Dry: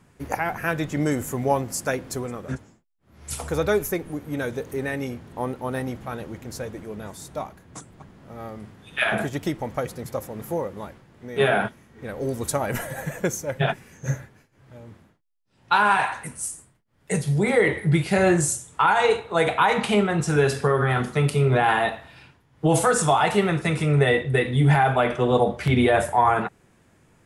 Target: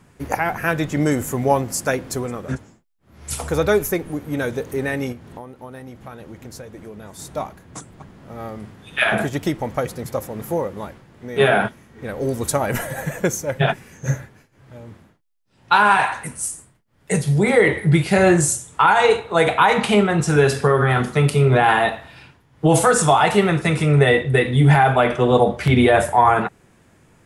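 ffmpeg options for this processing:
-filter_complex "[0:a]asettb=1/sr,asplit=3[a][b][c];[a]atrim=end=5.124[d];[b]atrim=start=5.12:end=7.19,asetpts=PTS-STARTPTS,afade=t=in:d=0.004:c=qsin,afade=t=out:st=2.066:d=0.004:c=qsin,acompressor=threshold=-38dB:ratio=10[e];[c]atrim=start=7.186[f];[d][e]acrossfade=d=0.004:c1=hsin:c2=qsin[g];[g][f]acrossfade=d=0.004:c1=qsin:c2=hsin,volume=4.5dB"

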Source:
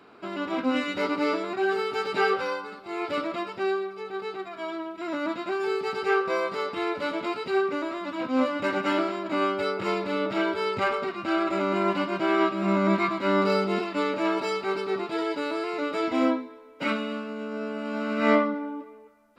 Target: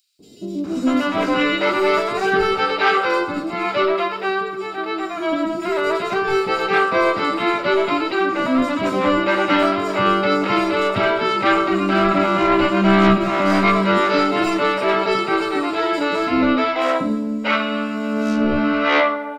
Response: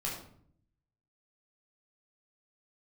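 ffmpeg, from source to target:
-filter_complex "[0:a]aeval=exprs='0.422*sin(PI/2*2.82*val(0)/0.422)':c=same,acrossover=split=420|5400[a][b][c];[a]adelay=190[d];[b]adelay=640[e];[d][e][c]amix=inputs=3:normalize=0,asplit=2[f][g];[1:a]atrim=start_sample=2205[h];[g][h]afir=irnorm=-1:irlink=0,volume=-14dB[i];[f][i]amix=inputs=2:normalize=0,volume=-2dB"

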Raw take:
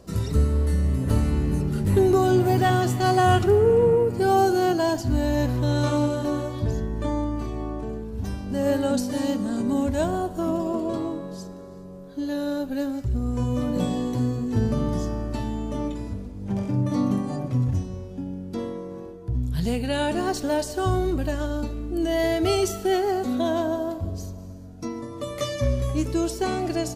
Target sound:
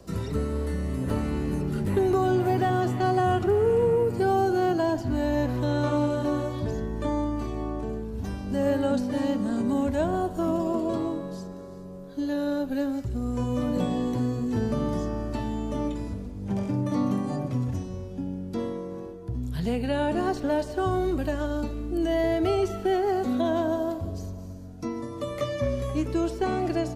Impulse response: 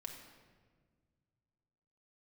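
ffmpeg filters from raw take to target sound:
-filter_complex "[0:a]acrossover=split=190|530|1400|3200[a][b][c][d][e];[a]acompressor=threshold=-31dB:ratio=4[f];[b]acompressor=threshold=-25dB:ratio=4[g];[c]acompressor=threshold=-27dB:ratio=4[h];[d]acompressor=threshold=-42dB:ratio=4[i];[e]acompressor=threshold=-52dB:ratio=4[j];[f][g][h][i][j]amix=inputs=5:normalize=0"

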